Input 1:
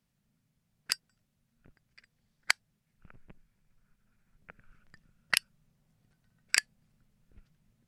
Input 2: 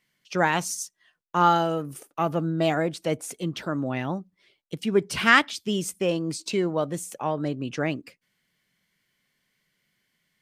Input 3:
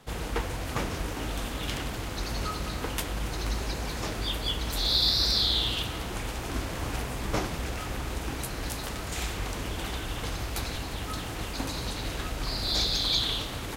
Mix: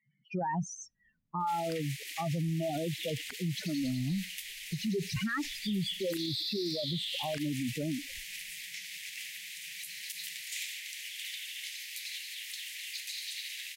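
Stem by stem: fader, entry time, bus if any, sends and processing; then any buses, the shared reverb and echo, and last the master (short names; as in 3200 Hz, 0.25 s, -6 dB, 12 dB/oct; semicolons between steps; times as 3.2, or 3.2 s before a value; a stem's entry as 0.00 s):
-11.0 dB, 0.80 s, no send, bell 130 Hz -12.5 dB 0.69 oct
-6.5 dB, 0.00 s, no send, spectral contrast raised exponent 3.8; LPF 7300 Hz 24 dB/oct
+1.5 dB, 1.40 s, no send, high shelf 7600 Hz +6.5 dB; compressor, threshold -29 dBFS, peak gain reduction 9.5 dB; steep high-pass 1900 Hz 72 dB/oct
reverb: off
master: tone controls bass +13 dB, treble -5 dB; limiter -26 dBFS, peak gain reduction 12.5 dB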